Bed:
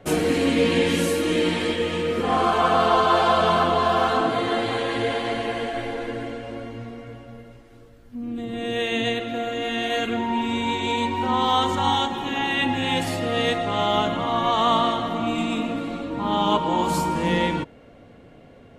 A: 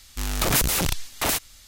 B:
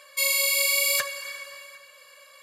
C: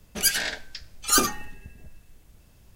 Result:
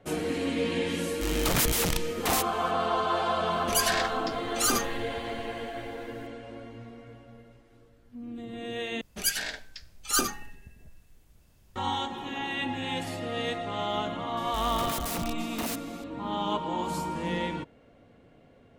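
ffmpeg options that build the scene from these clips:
-filter_complex "[1:a]asplit=2[s0][s1];[3:a]asplit=2[s2][s3];[0:a]volume=0.355[s4];[s0]asoftclip=type=hard:threshold=0.168[s5];[s2]alimiter=level_in=4.22:limit=0.891:release=50:level=0:latency=1[s6];[s1]asoftclip=type=hard:threshold=0.0316[s7];[s4]asplit=2[s8][s9];[s8]atrim=end=9.014[s10];[s3]atrim=end=2.75,asetpts=PTS-STARTPTS,volume=0.531[s11];[s9]atrim=start=11.756[s12];[s5]atrim=end=1.67,asetpts=PTS-STARTPTS,volume=0.631,afade=t=in:d=0.004:c=hsin,afade=t=out:st=1.666:d=0.004:c=hsin,adelay=1040[s13];[s6]atrim=end=2.75,asetpts=PTS-STARTPTS,volume=0.211,afade=t=in:d=0.004:c=hsin,afade=t=out:st=2.746:d=0.004:c=hsin,adelay=3520[s14];[s7]atrim=end=1.67,asetpts=PTS-STARTPTS,volume=0.668,afade=t=in:d=0.004:c=hsin,afade=t=out:st=1.666:d=0.004:c=hsin,adelay=14370[s15];[s10][s11]acrossfade=d=0.004:c1=hsin:c2=hsin[s16];[s16][s12]acrossfade=d=0.004:c1=hsin:c2=hsin[s17];[s17][s13][s14][s15]amix=inputs=4:normalize=0"

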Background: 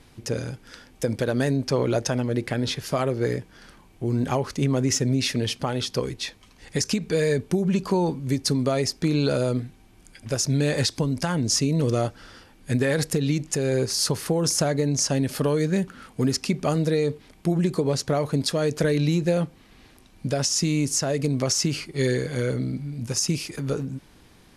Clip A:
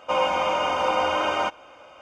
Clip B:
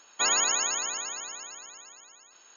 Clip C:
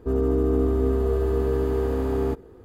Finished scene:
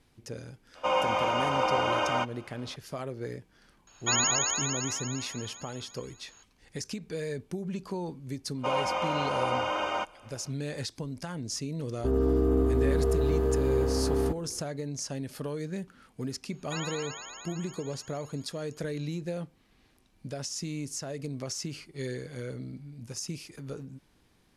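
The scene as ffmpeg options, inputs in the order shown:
-filter_complex "[1:a]asplit=2[s0][s1];[2:a]asplit=2[s2][s3];[0:a]volume=0.237[s4];[s3]acrossover=split=4800[s5][s6];[s6]acompressor=threshold=0.00708:ratio=4:attack=1:release=60[s7];[s5][s7]amix=inputs=2:normalize=0[s8];[s0]atrim=end=2.01,asetpts=PTS-STARTPTS,volume=0.631,afade=t=in:d=0.004:c=hsin,afade=t=out:st=2.006:d=0.004:c=hsin,adelay=750[s9];[s2]atrim=end=2.56,asetpts=PTS-STARTPTS,volume=0.841,afade=t=in:d=0.004:c=hsin,afade=t=out:st=2.556:d=0.004:c=hsin,adelay=3870[s10];[s1]atrim=end=2.01,asetpts=PTS-STARTPTS,volume=0.473,afade=t=in:d=0.1,afade=t=out:st=1.91:d=0.1,adelay=8550[s11];[3:a]atrim=end=2.64,asetpts=PTS-STARTPTS,volume=0.708,afade=t=in:d=0.004:c=hsin,afade=t=out:st=2.636:d=0.004:c=hsin,adelay=11980[s12];[s8]atrim=end=2.56,asetpts=PTS-STARTPTS,volume=0.335,afade=t=in:d=0.004:c=hsin,afade=t=out:st=2.556:d=0.004:c=hsin,adelay=16510[s13];[s4][s9][s10][s11][s12][s13]amix=inputs=6:normalize=0"

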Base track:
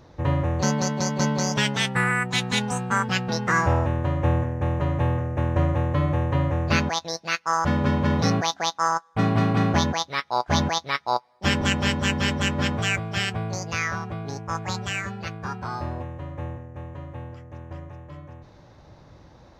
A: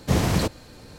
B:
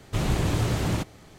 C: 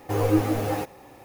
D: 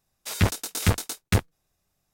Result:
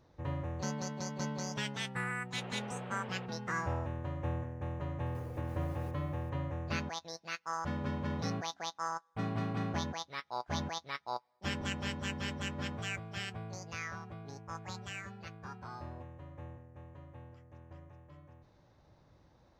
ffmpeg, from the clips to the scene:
-filter_complex "[0:a]volume=0.188[s0];[2:a]highpass=f=260:t=q:w=0.5412,highpass=f=260:t=q:w=1.307,lowpass=f=3000:t=q:w=0.5176,lowpass=f=3000:t=q:w=0.7071,lowpass=f=3000:t=q:w=1.932,afreqshift=170[s1];[3:a]acompressor=threshold=0.02:ratio=6:attack=3.2:release=140:knee=1:detection=peak[s2];[s1]atrim=end=1.38,asetpts=PTS-STARTPTS,volume=0.15,afade=t=in:d=0.004:c=hsin,afade=t=out:st=1.376:d=0.004:c=hsin,adelay=2230[s3];[s2]atrim=end=1.24,asetpts=PTS-STARTPTS,volume=0.2,afade=t=in:d=0.004:c=hsin,afade=t=out:st=1.236:d=0.004:c=hsin,adelay=5060[s4];[s0][s3][s4]amix=inputs=3:normalize=0"

